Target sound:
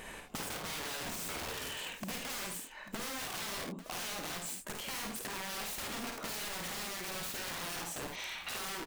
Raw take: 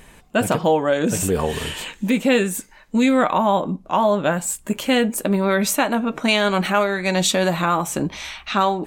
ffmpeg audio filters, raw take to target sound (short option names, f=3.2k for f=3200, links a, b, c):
-filter_complex "[0:a]bass=f=250:g=-10,treble=f=4k:g=-3,asplit=2[a][b];[b]alimiter=limit=-14.5dB:level=0:latency=1:release=67,volume=2dB[c];[a][c]amix=inputs=2:normalize=0,aeval=exprs='(mod(5.96*val(0)+1,2)-1)/5.96':c=same,acompressor=threshold=-34dB:ratio=16,aecho=1:1:52|75|82|843:0.562|0.335|0.15|0.211,volume=-5.5dB"